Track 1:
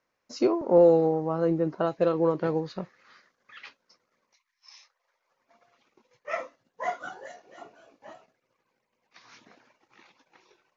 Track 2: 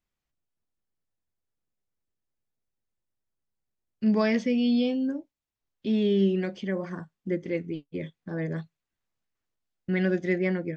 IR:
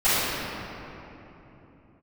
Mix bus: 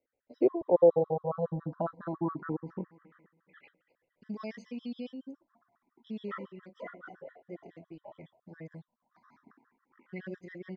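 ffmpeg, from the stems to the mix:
-filter_complex "[0:a]lowpass=1.3k,equalizer=f=250:w=4.9:g=5,asplit=2[a][b];[b]afreqshift=0.28[c];[a][c]amix=inputs=2:normalize=1,volume=0dB,asplit=3[d][e][f];[e]volume=-19.5dB[g];[1:a]adelay=200,volume=-13dB[h];[f]apad=whole_len=483564[i];[h][i]sidechaincompress=threshold=-44dB:ratio=8:attack=34:release=1110[j];[g]aecho=0:1:235|470|705|940|1175|1410:1|0.43|0.185|0.0795|0.0342|0.0147[k];[d][j][k]amix=inputs=3:normalize=0,afftfilt=real='re*gt(sin(2*PI*7.2*pts/sr)*(1-2*mod(floor(b*sr/1024/1000),2)),0)':imag='im*gt(sin(2*PI*7.2*pts/sr)*(1-2*mod(floor(b*sr/1024/1000),2)),0)':win_size=1024:overlap=0.75"

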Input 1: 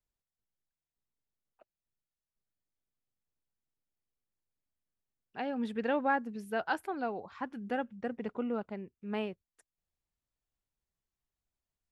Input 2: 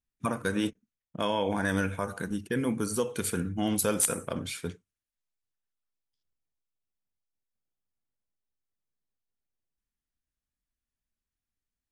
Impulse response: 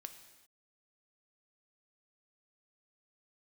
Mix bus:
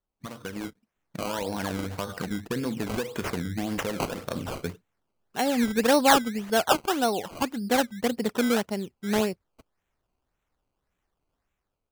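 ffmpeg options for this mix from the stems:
-filter_complex "[0:a]volume=1.5dB[a];[1:a]acompressor=threshold=-29dB:ratio=10,volume=-5.5dB[b];[a][b]amix=inputs=2:normalize=0,dynaudnorm=f=270:g=5:m=9dB,acrusher=samples=17:mix=1:aa=0.000001:lfo=1:lforange=17:lforate=1.8"

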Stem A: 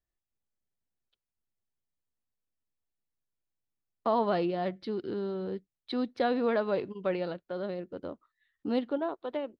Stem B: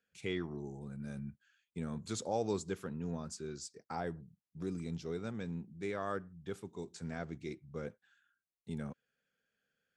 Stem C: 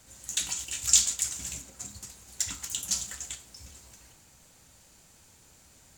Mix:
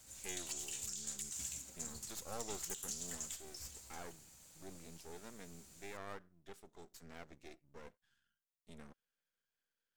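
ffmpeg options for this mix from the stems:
-filter_complex "[1:a]highpass=f=280:p=1,aeval=exprs='max(val(0),0)':c=same,volume=-6dB[a];[2:a]acompressor=threshold=-31dB:ratio=6,alimiter=level_in=4dB:limit=-24dB:level=0:latency=1:release=188,volume=-4dB,volume=-8dB[b];[a][b]amix=inputs=2:normalize=0,highshelf=f=4.2k:g=7.5"

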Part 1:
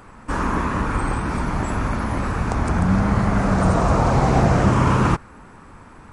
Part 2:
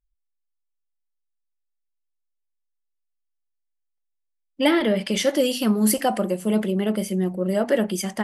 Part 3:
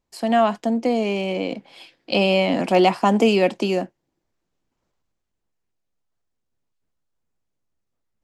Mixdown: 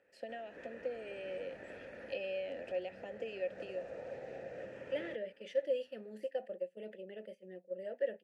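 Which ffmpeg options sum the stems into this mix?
-filter_complex "[0:a]dynaudnorm=f=110:g=11:m=11.5dB,volume=-13dB[a];[1:a]deesser=0.4,agate=range=-12dB:threshold=-24dB:ratio=16:detection=peak,adelay=300,volume=-10dB[b];[2:a]volume=-4.5dB[c];[a][c]amix=inputs=2:normalize=0,highshelf=f=4.9k:g=6,acompressor=threshold=-28dB:ratio=6,volume=0dB[d];[b][d]amix=inputs=2:normalize=0,asplit=3[e][f][g];[e]bandpass=f=530:t=q:w=8,volume=0dB[h];[f]bandpass=f=1.84k:t=q:w=8,volume=-6dB[i];[g]bandpass=f=2.48k:t=q:w=8,volume=-9dB[j];[h][i][j]amix=inputs=3:normalize=0"

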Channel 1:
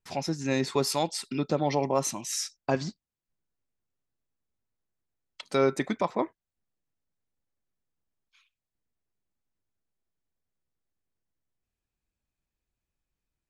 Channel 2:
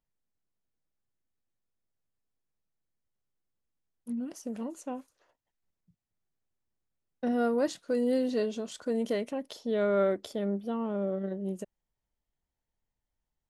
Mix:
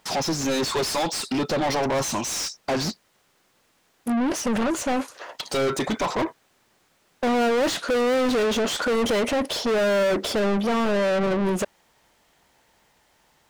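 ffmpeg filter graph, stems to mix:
-filter_complex "[0:a]bass=f=250:g=4,treble=f=4k:g=7,equalizer=f=2k:t=o:w=0.87:g=-8,volume=-10dB[a];[1:a]volume=1.5dB[b];[a][b]amix=inputs=2:normalize=0,asplit=2[c][d];[d]highpass=f=720:p=1,volume=39dB,asoftclip=type=tanh:threshold=-15.5dB[e];[c][e]amix=inputs=2:normalize=0,lowpass=f=3.1k:p=1,volume=-6dB"

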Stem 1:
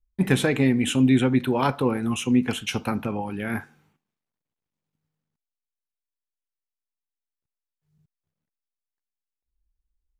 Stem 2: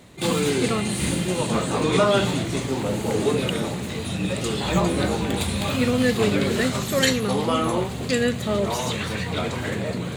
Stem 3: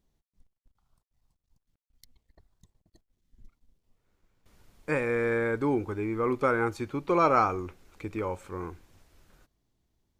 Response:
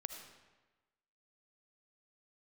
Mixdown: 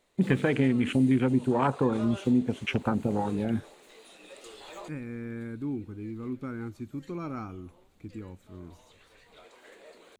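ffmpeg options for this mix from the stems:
-filter_complex "[0:a]afwtdn=0.0355,highshelf=f=7.6k:g=-10,volume=2.5dB[a];[1:a]highpass=f=360:w=0.5412,highpass=f=360:w=1.3066,volume=-19dB[b];[2:a]equalizer=f=125:t=o:w=1:g=4,equalizer=f=250:t=o:w=1:g=9,equalizer=f=500:t=o:w=1:g=-12,equalizer=f=1k:t=o:w=1:g=-10,equalizer=f=2k:t=o:w=1:g=-5,equalizer=f=4k:t=o:w=1:g=-6,equalizer=f=8k:t=o:w=1:g=-6,volume=-8dB,asplit=2[c][d];[d]apad=whole_len=448061[e];[b][e]sidechaincompress=threshold=-54dB:ratio=6:attack=12:release=1340[f];[a][f][c]amix=inputs=3:normalize=0,acompressor=threshold=-23dB:ratio=2.5"

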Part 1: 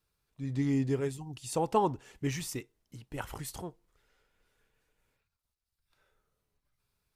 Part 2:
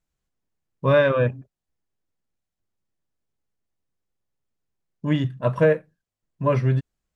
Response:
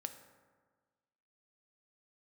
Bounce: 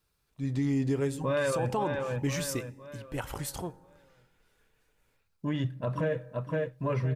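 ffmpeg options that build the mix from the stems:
-filter_complex "[0:a]volume=1dB,asplit=2[a][b];[b]volume=-4dB[c];[1:a]aphaser=in_gain=1:out_gain=1:delay=4.9:decay=0.3:speed=0.73:type=triangular,adelay=400,volume=-6dB,asplit=3[d][e][f];[e]volume=-14dB[g];[f]volume=-7dB[h];[2:a]atrim=start_sample=2205[i];[c][g]amix=inputs=2:normalize=0[j];[j][i]afir=irnorm=-1:irlink=0[k];[h]aecho=0:1:513|1026|1539|2052|2565:1|0.39|0.152|0.0593|0.0231[l];[a][d][k][l]amix=inputs=4:normalize=0,alimiter=limit=-21dB:level=0:latency=1:release=82"

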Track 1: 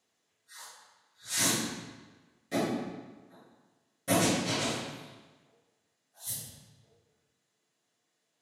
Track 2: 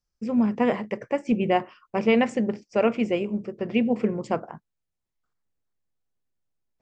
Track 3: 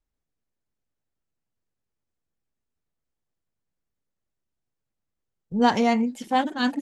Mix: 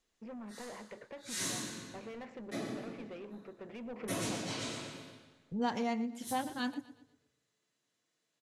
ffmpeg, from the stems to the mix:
-filter_complex "[0:a]lowpass=11k,equalizer=f=770:w=2.9:g=-5.5,volume=-4dB,asplit=2[a][b];[b]volume=-8.5dB[c];[1:a]lowpass=3.8k,acompressor=threshold=-24dB:ratio=4,asplit=2[d][e];[e]highpass=f=720:p=1,volume=22dB,asoftclip=type=tanh:threshold=-17dB[f];[d][f]amix=inputs=2:normalize=0,lowpass=f=2.3k:p=1,volume=-6dB,volume=-13dB,afade=t=in:st=3.77:d=0.32:silence=0.398107,asplit=2[g][h];[h]volume=-18.5dB[i];[2:a]volume=-6.5dB,asplit=2[j][k];[k]volume=-17dB[l];[c][i][l]amix=inputs=3:normalize=0,aecho=0:1:119|238|357|476|595:1|0.32|0.102|0.0328|0.0105[m];[a][g][j][m]amix=inputs=4:normalize=0,acompressor=threshold=-43dB:ratio=1.5"

